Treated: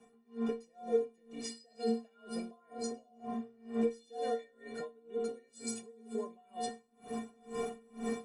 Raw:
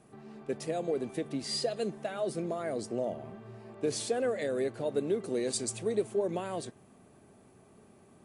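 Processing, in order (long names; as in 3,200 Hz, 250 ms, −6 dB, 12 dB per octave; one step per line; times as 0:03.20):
camcorder AGC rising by 33 dB per second
low-shelf EQ 150 Hz +9 dB
stiff-string resonator 210 Hz, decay 0.7 s, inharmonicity 0.03
frequency shifter +15 Hz
bass and treble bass −9 dB, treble −4 dB
in parallel at +1 dB: downward compressor, threshold −57 dBFS, peak gain reduction 17.5 dB
on the sum: four-comb reverb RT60 1.2 s, combs from 28 ms, DRR 8.5 dB
tremolo with a sine in dB 2.1 Hz, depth 31 dB
level +13.5 dB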